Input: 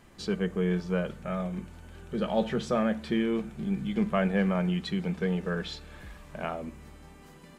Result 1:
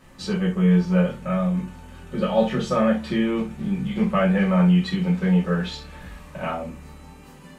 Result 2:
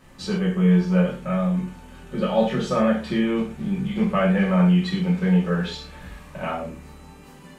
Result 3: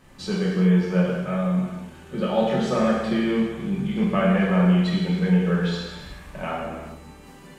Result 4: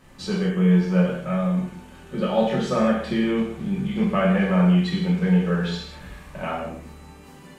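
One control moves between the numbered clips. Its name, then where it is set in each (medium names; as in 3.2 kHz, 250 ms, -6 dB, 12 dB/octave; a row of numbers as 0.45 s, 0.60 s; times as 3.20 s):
gated-style reverb, gate: 100 ms, 150 ms, 450 ms, 260 ms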